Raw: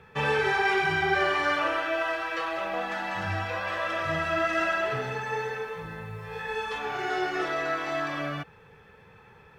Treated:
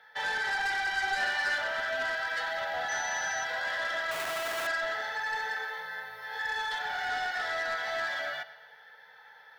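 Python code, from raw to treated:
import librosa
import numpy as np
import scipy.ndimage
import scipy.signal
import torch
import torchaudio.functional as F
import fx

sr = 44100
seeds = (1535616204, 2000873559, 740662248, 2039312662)

p1 = fx.rider(x, sr, range_db=5, speed_s=0.5)
p2 = x + (p1 * librosa.db_to_amplitude(1.0))
p3 = fx.fixed_phaser(p2, sr, hz=1700.0, stages=8)
p4 = fx.echo_feedback(p3, sr, ms=112, feedback_pct=53, wet_db=-17.5)
p5 = fx.schmitt(p4, sr, flips_db=-27.5, at=(4.11, 4.67))
p6 = scipy.signal.sosfilt(scipy.signal.butter(2, 920.0, 'highpass', fs=sr, output='sos'), p5)
p7 = 10.0 ** (-24.5 / 20.0) * np.tanh(p6 / 10.0 ** (-24.5 / 20.0))
p8 = fx.doubler(p7, sr, ms=13.0, db=-3.0, at=(0.92, 1.58))
p9 = fx.dmg_tone(p8, sr, hz=6000.0, level_db=-37.0, at=(2.88, 3.43), fade=0.02)
y = p9 * librosa.db_to_amplitude(-2.0)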